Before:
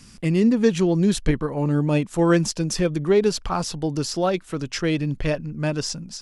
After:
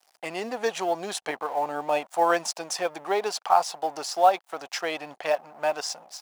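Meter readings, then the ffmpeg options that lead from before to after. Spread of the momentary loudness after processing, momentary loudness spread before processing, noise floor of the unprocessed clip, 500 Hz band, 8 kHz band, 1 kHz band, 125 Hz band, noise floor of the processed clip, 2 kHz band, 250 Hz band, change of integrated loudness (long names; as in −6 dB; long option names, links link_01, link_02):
11 LU, 7 LU, −47 dBFS, −4.0 dB, −3.0 dB, +7.5 dB, −29.0 dB, −68 dBFS, −1.0 dB, −18.5 dB, −5.0 dB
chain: -af "aeval=exprs='sgn(val(0))*max(abs(val(0))-0.0075,0)':channel_layout=same,highpass=frequency=750:width_type=q:width=4.9,acrusher=bits=8:mode=log:mix=0:aa=0.000001,volume=-2dB"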